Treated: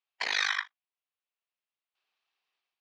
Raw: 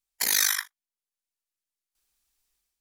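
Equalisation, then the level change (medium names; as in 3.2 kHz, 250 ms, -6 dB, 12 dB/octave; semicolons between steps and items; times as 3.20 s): cabinet simulation 450–3900 Hz, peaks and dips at 710 Hz +4 dB, 1.1 kHz +4 dB, 2.7 kHz +5 dB; 0.0 dB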